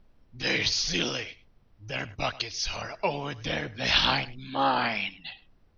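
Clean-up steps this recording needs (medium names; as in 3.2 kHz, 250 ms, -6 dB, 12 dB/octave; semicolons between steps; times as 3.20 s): expander -51 dBFS, range -21 dB; inverse comb 102 ms -19 dB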